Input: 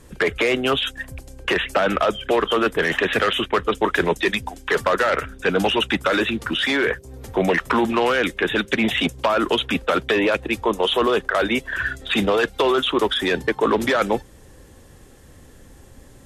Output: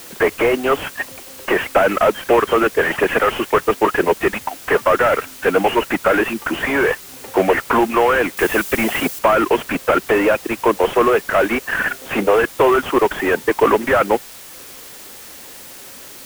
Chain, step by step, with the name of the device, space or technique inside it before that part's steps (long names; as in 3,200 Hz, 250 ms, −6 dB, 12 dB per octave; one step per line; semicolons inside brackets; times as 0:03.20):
reverb reduction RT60 0.62 s
army field radio (band-pass filter 330–2,900 Hz; variable-slope delta modulation 16 kbit/s; white noise bed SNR 20 dB)
0:08.37–0:09.19: high-shelf EQ 4,900 Hz +10 dB
level +8 dB